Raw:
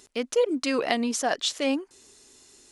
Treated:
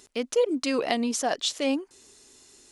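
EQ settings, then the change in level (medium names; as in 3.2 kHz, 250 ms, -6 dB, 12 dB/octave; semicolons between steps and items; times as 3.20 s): dynamic bell 1.6 kHz, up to -4 dB, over -41 dBFS, Q 1.3; 0.0 dB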